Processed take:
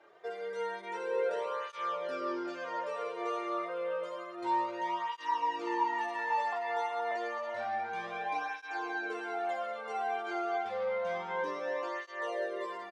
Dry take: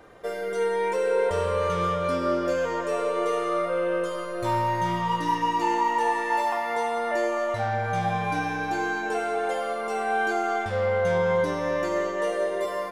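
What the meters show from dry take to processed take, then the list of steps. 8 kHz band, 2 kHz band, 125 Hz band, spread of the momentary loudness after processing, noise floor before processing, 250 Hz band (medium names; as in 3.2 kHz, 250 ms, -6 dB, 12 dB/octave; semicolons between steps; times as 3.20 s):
under -15 dB, -8.0 dB, under -25 dB, 5 LU, -31 dBFS, -11.5 dB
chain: band-pass 420–4800 Hz; on a send: early reflections 26 ms -9.5 dB, 40 ms -10 dB; on the sum: cancelling through-zero flanger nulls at 0.29 Hz, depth 4.1 ms; trim -5.5 dB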